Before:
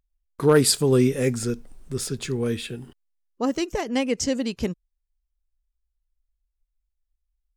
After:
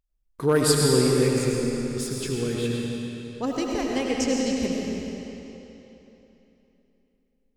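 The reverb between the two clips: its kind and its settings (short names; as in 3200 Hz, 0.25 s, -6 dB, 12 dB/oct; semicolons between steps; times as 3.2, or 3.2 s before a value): digital reverb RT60 3.3 s, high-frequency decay 0.9×, pre-delay 55 ms, DRR -2 dB; gain -4 dB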